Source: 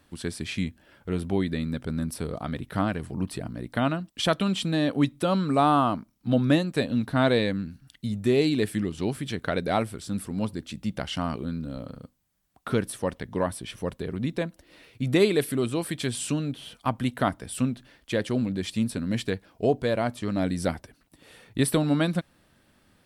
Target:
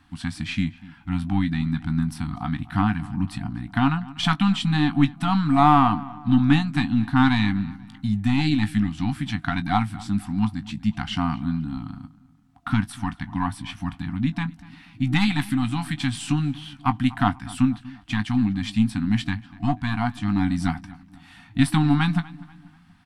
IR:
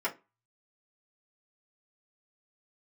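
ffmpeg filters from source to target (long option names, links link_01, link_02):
-filter_complex "[0:a]aeval=exprs='0.355*(cos(1*acos(clip(val(0)/0.355,-1,1)))-cos(1*PI/2))+0.0282*(cos(4*acos(clip(val(0)/0.355,-1,1)))-cos(4*PI/2))':channel_layout=same,afftfilt=real='re*(1-between(b*sr/4096,310,690))':imag='im*(1-between(b*sr/4096,310,690))':win_size=4096:overlap=0.75,aemphasis=mode=reproduction:type=50fm,asplit=2[link_01][link_02];[link_02]adelay=19,volume=-11.5dB[link_03];[link_01][link_03]amix=inputs=2:normalize=0,asplit=2[link_04][link_05];[link_05]adelay=243,lowpass=frequency=2700:poles=1,volume=-19.5dB,asplit=2[link_06][link_07];[link_07]adelay=243,lowpass=frequency=2700:poles=1,volume=0.45,asplit=2[link_08][link_09];[link_09]adelay=243,lowpass=frequency=2700:poles=1,volume=0.45[link_10];[link_06][link_08][link_10]amix=inputs=3:normalize=0[link_11];[link_04][link_11]amix=inputs=2:normalize=0,volume=5dB"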